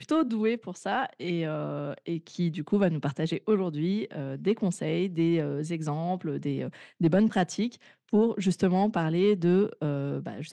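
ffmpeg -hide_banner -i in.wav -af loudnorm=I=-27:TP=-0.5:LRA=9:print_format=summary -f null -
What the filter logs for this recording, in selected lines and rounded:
Input Integrated:    -27.9 LUFS
Input True Peak:     -13.1 dBTP
Input LRA:             3.7 LU
Input Threshold:     -38.0 LUFS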